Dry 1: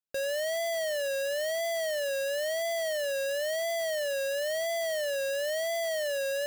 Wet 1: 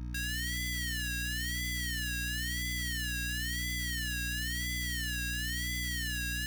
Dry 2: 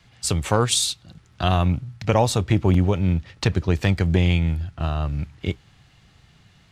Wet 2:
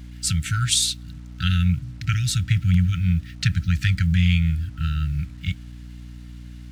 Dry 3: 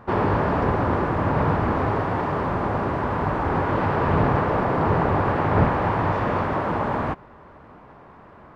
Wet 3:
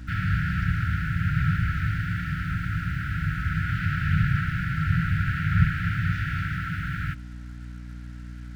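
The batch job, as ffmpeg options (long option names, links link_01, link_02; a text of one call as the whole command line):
ffmpeg -i in.wav -af "afftfilt=real='re*(1-between(b*sr/4096,190,1300))':imag='im*(1-between(b*sr/4096,190,1300))':win_size=4096:overlap=0.75,aeval=exprs='val(0)+0.0126*(sin(2*PI*60*n/s)+sin(2*PI*2*60*n/s)/2+sin(2*PI*3*60*n/s)/3+sin(2*PI*4*60*n/s)/4+sin(2*PI*5*60*n/s)/5)':channel_layout=same,acrusher=bits=8:mix=0:aa=0.5,volume=1dB" out.wav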